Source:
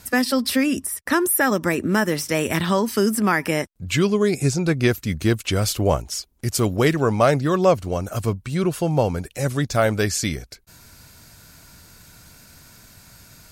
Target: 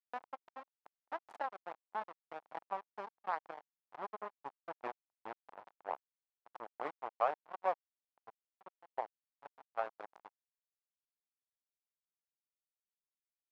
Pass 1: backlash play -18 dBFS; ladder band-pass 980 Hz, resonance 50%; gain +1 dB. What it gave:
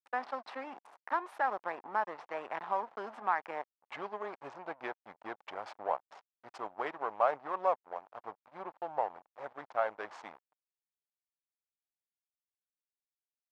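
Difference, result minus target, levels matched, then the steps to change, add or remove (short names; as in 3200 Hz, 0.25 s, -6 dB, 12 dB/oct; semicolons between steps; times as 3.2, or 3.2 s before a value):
backlash: distortion -19 dB
change: backlash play -7 dBFS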